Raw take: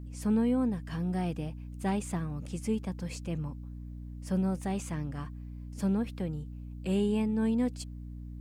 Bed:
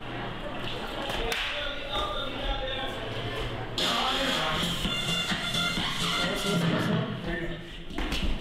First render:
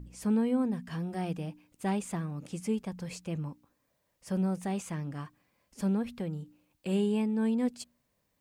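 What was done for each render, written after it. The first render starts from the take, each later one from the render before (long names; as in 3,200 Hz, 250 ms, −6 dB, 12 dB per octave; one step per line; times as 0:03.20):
hum removal 60 Hz, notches 5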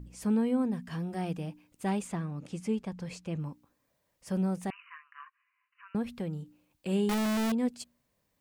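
0:02.07–0:03.40: high-shelf EQ 9,600 Hz −12 dB
0:04.70–0:05.95: linear-phase brick-wall band-pass 980–3,000 Hz
0:07.09–0:07.52: sign of each sample alone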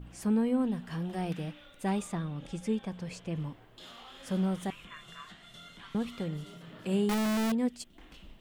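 mix in bed −23 dB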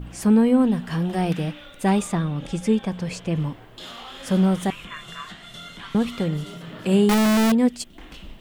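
level +11 dB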